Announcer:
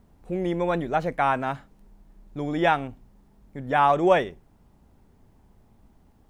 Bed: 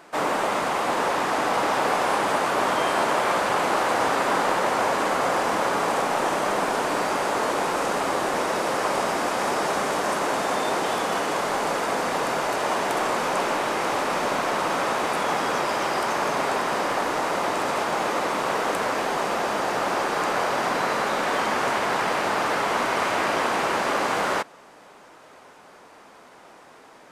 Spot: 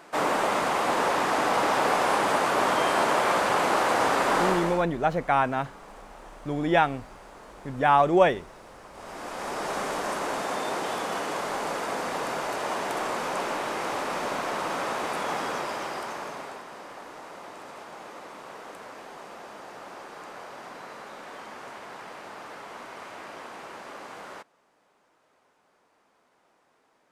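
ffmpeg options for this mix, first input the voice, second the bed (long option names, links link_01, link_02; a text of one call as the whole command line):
ffmpeg -i stem1.wav -i stem2.wav -filter_complex "[0:a]adelay=4100,volume=0dB[link_01];[1:a]volume=17dB,afade=type=out:start_time=4.44:duration=0.41:silence=0.0749894,afade=type=in:start_time=8.93:duration=0.86:silence=0.125893,afade=type=out:start_time=15.39:duration=1.26:silence=0.237137[link_02];[link_01][link_02]amix=inputs=2:normalize=0" out.wav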